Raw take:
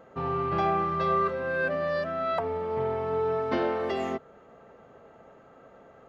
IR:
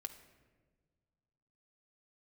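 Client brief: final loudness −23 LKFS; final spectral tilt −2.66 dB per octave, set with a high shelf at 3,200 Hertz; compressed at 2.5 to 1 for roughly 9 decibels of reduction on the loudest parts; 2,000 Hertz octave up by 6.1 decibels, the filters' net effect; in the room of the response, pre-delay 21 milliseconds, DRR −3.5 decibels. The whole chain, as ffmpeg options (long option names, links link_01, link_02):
-filter_complex "[0:a]equalizer=frequency=2000:width_type=o:gain=5.5,highshelf=frequency=3200:gain=9,acompressor=threshold=-34dB:ratio=2.5,asplit=2[link_01][link_02];[1:a]atrim=start_sample=2205,adelay=21[link_03];[link_02][link_03]afir=irnorm=-1:irlink=0,volume=7dB[link_04];[link_01][link_04]amix=inputs=2:normalize=0,volume=4.5dB"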